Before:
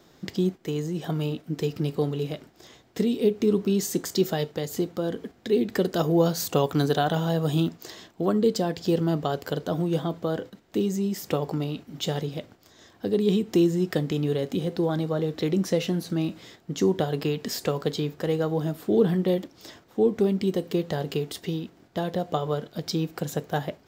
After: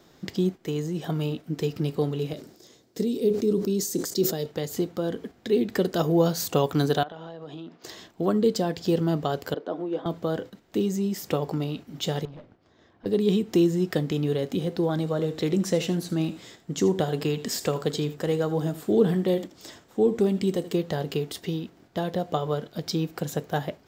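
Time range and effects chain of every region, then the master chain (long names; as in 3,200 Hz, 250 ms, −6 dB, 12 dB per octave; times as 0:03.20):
0:02.33–0:04.46: high-pass filter 210 Hz 6 dB per octave + flat-topped bell 1,500 Hz −9 dB 2.6 octaves + level that may fall only so fast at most 89 dB per second
0:07.03–0:07.84: high-pass filter 270 Hz + downward compressor 8 to 1, threshold −35 dBFS + high-frequency loss of the air 200 metres
0:09.54–0:10.06: high-pass filter 270 Hz 24 dB per octave + head-to-tape spacing loss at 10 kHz 30 dB
0:12.25–0:13.06: tube saturation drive 39 dB, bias 0.5 + head-to-tape spacing loss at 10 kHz 26 dB
0:14.97–0:20.77: parametric band 7,700 Hz +7 dB 0.39 octaves + single-tap delay 80 ms −15 dB
whole clip: no processing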